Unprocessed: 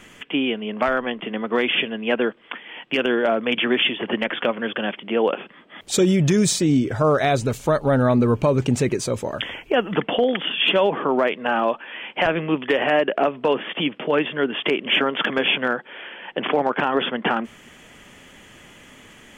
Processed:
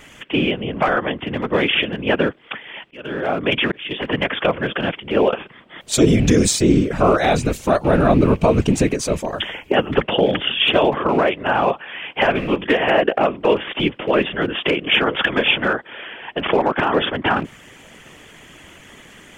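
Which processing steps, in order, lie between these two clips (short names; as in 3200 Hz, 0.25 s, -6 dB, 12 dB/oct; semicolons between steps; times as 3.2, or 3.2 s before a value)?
rattling part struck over -29 dBFS, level -30 dBFS; whisperiser; 2.62–3.91 auto swell 0.6 s; gain +3 dB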